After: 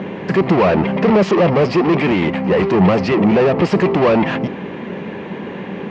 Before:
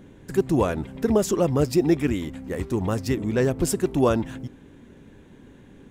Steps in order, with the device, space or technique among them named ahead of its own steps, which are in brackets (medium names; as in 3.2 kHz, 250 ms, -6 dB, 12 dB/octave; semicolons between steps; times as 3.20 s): overdrive pedal into a guitar cabinet (overdrive pedal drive 35 dB, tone 2.4 kHz, clips at -7.5 dBFS; cabinet simulation 99–4100 Hz, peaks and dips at 120 Hz -5 dB, 190 Hz +9 dB, 270 Hz -9 dB, 1.5 kHz -8 dB, 3.6 kHz -9 dB); trim +2.5 dB